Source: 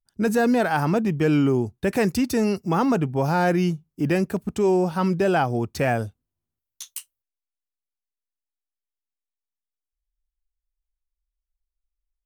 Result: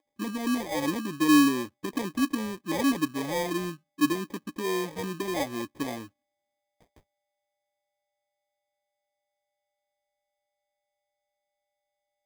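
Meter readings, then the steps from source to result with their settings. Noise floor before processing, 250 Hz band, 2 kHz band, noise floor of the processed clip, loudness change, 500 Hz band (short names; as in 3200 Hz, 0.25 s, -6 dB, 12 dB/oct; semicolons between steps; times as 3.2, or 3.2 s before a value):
under -85 dBFS, -4.0 dB, -5.0 dB, -84 dBFS, -6.0 dB, -11.0 dB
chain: whine 590 Hz -51 dBFS; vowel filter u; sample-rate reducer 1400 Hz, jitter 0%; gain +3.5 dB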